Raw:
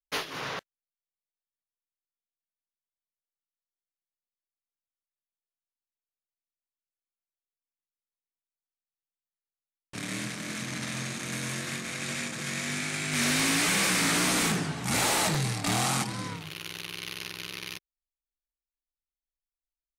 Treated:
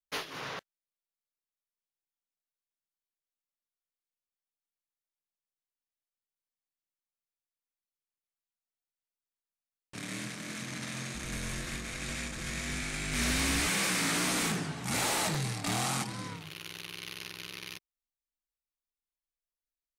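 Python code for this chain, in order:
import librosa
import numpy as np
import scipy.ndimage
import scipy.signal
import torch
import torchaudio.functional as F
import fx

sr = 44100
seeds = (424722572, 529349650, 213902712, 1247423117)

y = fx.octave_divider(x, sr, octaves=2, level_db=1.0, at=(11.14, 13.68))
y = y * librosa.db_to_amplitude(-4.5)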